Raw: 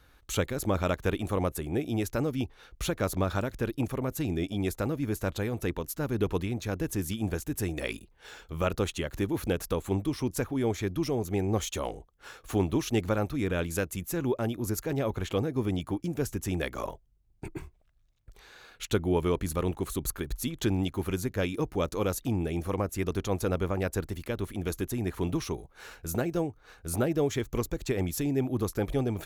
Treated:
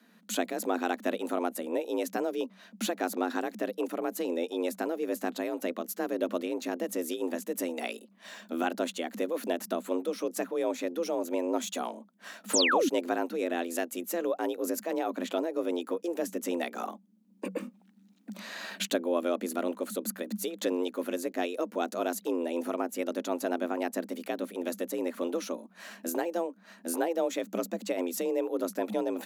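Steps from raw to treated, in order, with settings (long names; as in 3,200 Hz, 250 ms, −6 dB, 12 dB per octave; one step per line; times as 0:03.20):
camcorder AGC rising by 8.8 dB per second
frequency shifter +170 Hz
sound drawn into the spectrogram fall, 0:12.53–0:12.89, 230–9,300 Hz −23 dBFS
level −2.5 dB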